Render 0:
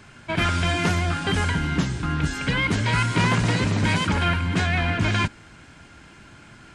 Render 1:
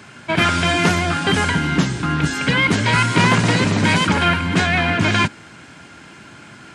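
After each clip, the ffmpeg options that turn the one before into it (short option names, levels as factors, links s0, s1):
-af "highpass=130,volume=2.24"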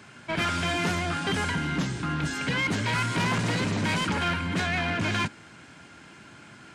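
-af "asoftclip=type=tanh:threshold=0.211,volume=0.422"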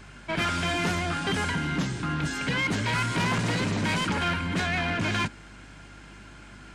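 -af "aeval=exprs='val(0)+0.00355*(sin(2*PI*50*n/s)+sin(2*PI*2*50*n/s)/2+sin(2*PI*3*50*n/s)/3+sin(2*PI*4*50*n/s)/4+sin(2*PI*5*50*n/s)/5)':c=same"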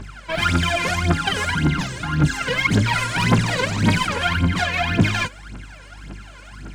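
-af "aphaser=in_gain=1:out_gain=1:delay=2.1:decay=0.79:speed=1.8:type=triangular,volume=1.26"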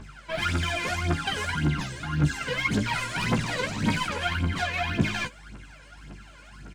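-filter_complex "[0:a]asplit=2[s0][s1];[s1]adelay=14,volume=0.501[s2];[s0][s2]amix=inputs=2:normalize=0,volume=0.398"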